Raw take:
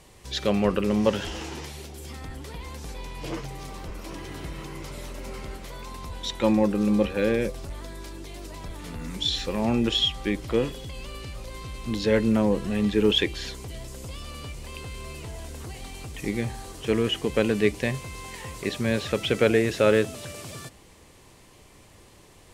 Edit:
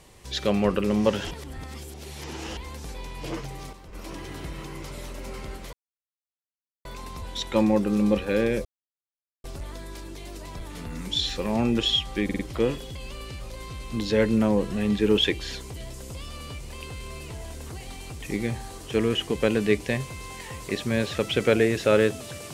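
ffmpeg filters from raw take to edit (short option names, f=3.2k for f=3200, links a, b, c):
-filter_complex "[0:a]asplit=10[a][b][c][d][e][f][g][h][i][j];[a]atrim=end=1.312[k];[b]atrim=start=1.308:end=2.572,asetpts=PTS-STARTPTS,areverse[l];[c]atrim=start=2.568:end=3.73,asetpts=PTS-STARTPTS,afade=t=out:st=0.922:d=0.24:c=log:silence=0.354813[m];[d]atrim=start=3.73:end=3.93,asetpts=PTS-STARTPTS,volume=-9dB[n];[e]atrim=start=3.93:end=5.73,asetpts=PTS-STARTPTS,afade=t=in:d=0.24:c=log:silence=0.354813,afade=t=out:st=1.796:d=0.004:c=hsin,apad=pad_dur=1.12[o];[f]atrim=start=5.73:end=7.53,asetpts=PTS-STARTPTS,afade=t=in:d=0.004:c=hsin,afade=t=out:st=1.796:d=0.004:c=hsin,apad=pad_dur=0.79[p];[g]atrim=start=7.53:end=10.382,asetpts=PTS-STARTPTS,afade=t=in:d=0.004:c=hsin[q];[h]atrim=start=10.328:end=10.382[r];[i]atrim=start=10.328:end=10.382[s];[j]atrim=start=10.328[t];[k][l]acrossfade=d=0.004:c1=hsin:c2=hsin[u];[m][n][o][p][q]concat=n=5:v=0:a=1[v];[u][v]acrossfade=d=0.004:c1=hsin:c2=hsin[w];[w][r]acrossfade=d=0.004:c1=hsin:c2=hsin[x];[x][s]acrossfade=d=0.004:c1=hsin:c2=hsin[y];[y][t]acrossfade=d=0.004:c1=hsin:c2=hsin"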